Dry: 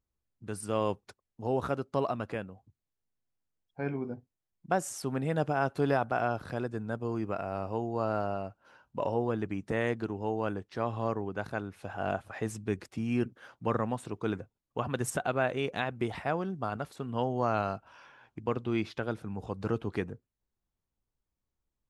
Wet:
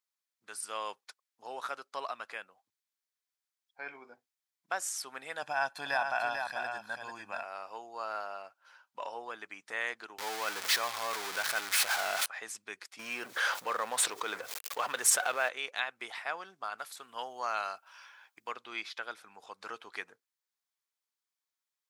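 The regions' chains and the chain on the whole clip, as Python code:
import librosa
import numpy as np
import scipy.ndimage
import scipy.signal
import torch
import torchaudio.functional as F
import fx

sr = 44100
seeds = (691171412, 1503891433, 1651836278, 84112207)

y = fx.chain(x, sr, fx.low_shelf(hz=280.0, db=8.5),
    fx.comb(ms=1.2, depth=0.64),
    fx.echo_single(ms=443, db=-5.5), at=(5.42, 7.43))
y = fx.chain(y, sr, fx.zero_step(step_db=-31.5),
    fx.low_shelf(hz=94.0, db=10.5),
    fx.env_flatten(amount_pct=70), at=(10.18, 12.26))
y = fx.chain(y, sr, fx.law_mismatch(coded='mu'),
    fx.peak_eq(hz=500.0, db=6.0, octaves=0.6),
    fx.env_flatten(amount_pct=70), at=(12.99, 15.49))
y = fx.chain(y, sr, fx.highpass(hz=52.0, slope=12),
    fx.high_shelf(hz=8300.0, db=11.5), at=(16.78, 18.52))
y = scipy.signal.sosfilt(scipy.signal.butter(2, 1300.0, 'highpass', fs=sr, output='sos'), y)
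y = fx.peak_eq(y, sr, hz=4700.0, db=2.0, octaves=0.77)
y = fx.notch(y, sr, hz=2800.0, q=18.0)
y = y * librosa.db_to_amplitude(3.0)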